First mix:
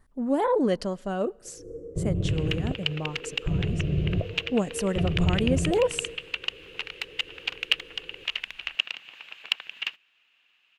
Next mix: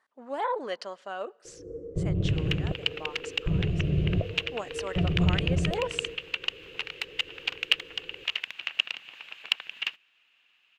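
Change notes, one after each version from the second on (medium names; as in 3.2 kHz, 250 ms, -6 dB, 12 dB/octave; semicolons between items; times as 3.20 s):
speech: add band-pass 790–5000 Hz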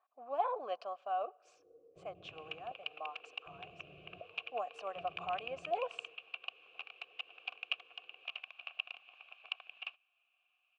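speech +5.5 dB; first sound -7.0 dB; master: add vowel filter a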